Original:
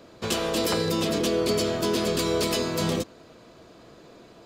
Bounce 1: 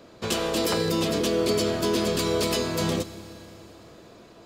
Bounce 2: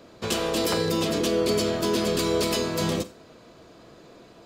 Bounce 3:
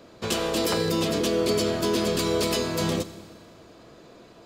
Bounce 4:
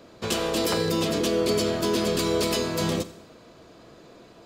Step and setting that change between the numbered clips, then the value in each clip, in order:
Schroeder reverb, RT60: 3.5, 0.32, 1.7, 0.77 s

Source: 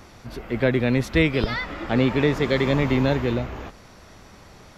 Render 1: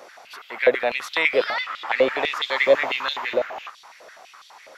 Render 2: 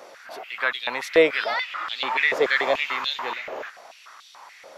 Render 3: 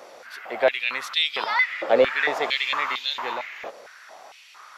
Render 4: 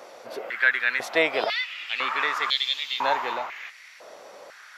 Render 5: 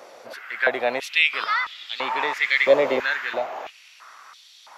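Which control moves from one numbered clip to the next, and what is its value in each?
stepped high-pass, rate: 12, 6.9, 4.4, 2, 3 Hz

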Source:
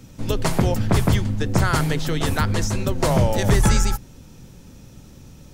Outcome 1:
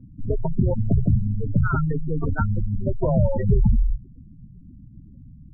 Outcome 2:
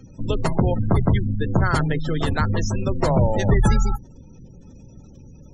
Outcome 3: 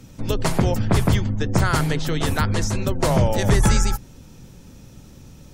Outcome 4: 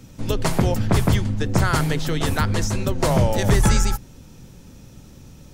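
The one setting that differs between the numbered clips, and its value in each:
spectral gate, under each frame's peak: -10, -25, -45, -60 dB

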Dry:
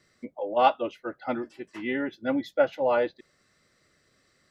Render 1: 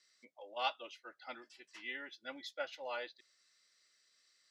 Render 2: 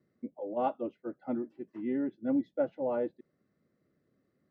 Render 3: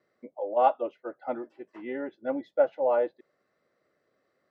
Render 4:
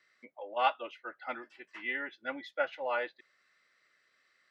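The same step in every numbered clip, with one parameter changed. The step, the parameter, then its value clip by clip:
band-pass, frequency: 5100, 230, 600, 2000 Hz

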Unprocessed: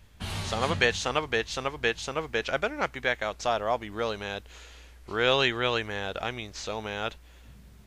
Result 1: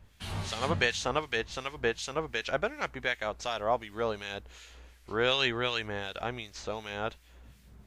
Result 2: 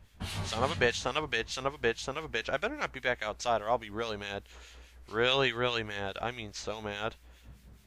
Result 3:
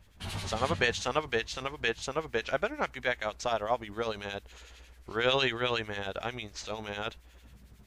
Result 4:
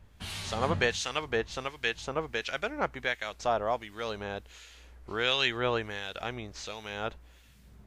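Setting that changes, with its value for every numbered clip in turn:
harmonic tremolo, rate: 2.7, 4.8, 11, 1.4 Hz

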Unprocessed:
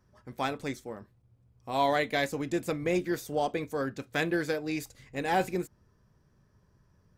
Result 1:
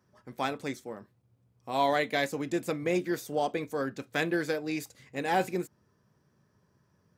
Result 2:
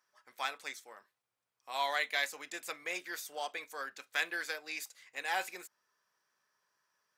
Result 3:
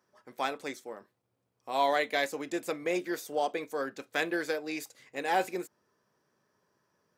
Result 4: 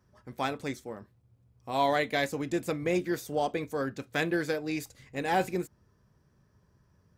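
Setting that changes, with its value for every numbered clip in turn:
HPF, cutoff: 130, 1200, 370, 42 Hz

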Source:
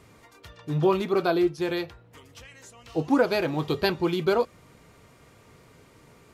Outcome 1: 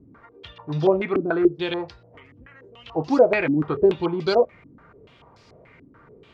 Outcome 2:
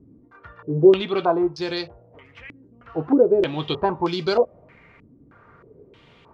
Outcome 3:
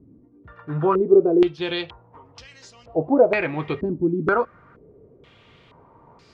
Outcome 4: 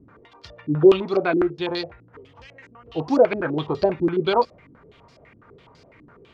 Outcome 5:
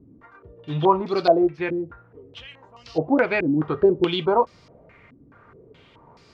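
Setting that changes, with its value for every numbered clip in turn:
stepped low-pass, rate: 6.9, 3.2, 2.1, 12, 4.7 Hz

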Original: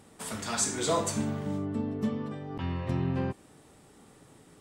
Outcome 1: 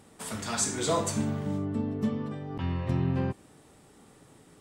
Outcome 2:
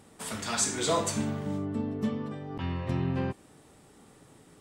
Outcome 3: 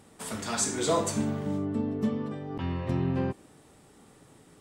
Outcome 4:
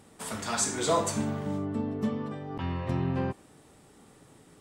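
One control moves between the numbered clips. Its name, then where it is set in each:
dynamic EQ, frequency: 110, 2900, 350, 900 Hz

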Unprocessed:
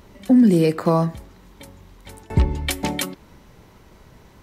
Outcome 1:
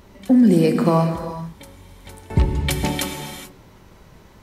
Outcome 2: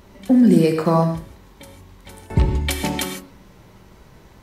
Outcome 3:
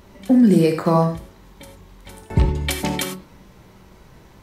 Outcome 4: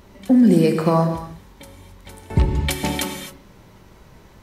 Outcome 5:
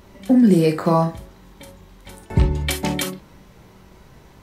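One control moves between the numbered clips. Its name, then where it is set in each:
non-linear reverb, gate: 460, 180, 120, 290, 80 ms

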